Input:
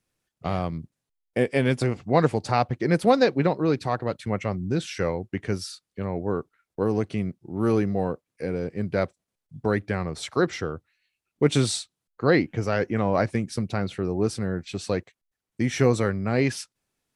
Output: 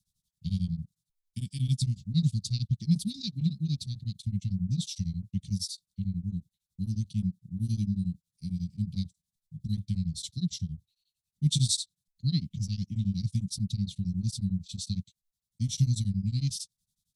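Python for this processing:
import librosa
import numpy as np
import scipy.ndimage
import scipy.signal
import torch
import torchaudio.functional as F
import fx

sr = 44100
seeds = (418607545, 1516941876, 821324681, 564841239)

y = scipy.signal.sosfilt(scipy.signal.cheby1(4, 1.0, [190.0, 3600.0], 'bandstop', fs=sr, output='sos'), x)
y = y * np.abs(np.cos(np.pi * 11.0 * np.arange(len(y)) / sr))
y = F.gain(torch.from_numpy(y), 3.5).numpy()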